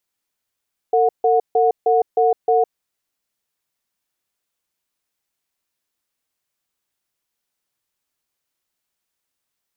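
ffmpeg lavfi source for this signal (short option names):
-f lavfi -i "aevalsrc='0.178*(sin(2*PI*453*t)+sin(2*PI*730*t))*clip(min(mod(t,0.31),0.16-mod(t,0.31))/0.005,0,1)':d=1.71:s=44100"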